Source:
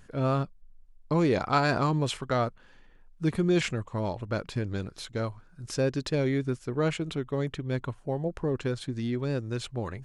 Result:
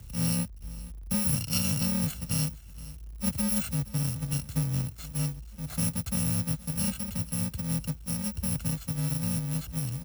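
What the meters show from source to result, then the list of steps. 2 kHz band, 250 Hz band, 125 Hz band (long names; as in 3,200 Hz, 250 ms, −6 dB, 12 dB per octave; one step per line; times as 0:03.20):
−8.0 dB, −1.5 dB, +0.5 dB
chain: samples in bit-reversed order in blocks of 128 samples
parametric band 64 Hz +8 dB 2.6 octaves
on a send: single-tap delay 470 ms −21.5 dB
on the sum: log-companded quantiser 4 bits
low-shelf EQ 130 Hz +11.5 dB
in parallel at −1.5 dB: downward compressor, threshold −35 dBFS, peak gain reduction 17.5 dB
on the sum: frequency shifter +36 Hz
level −7.5 dB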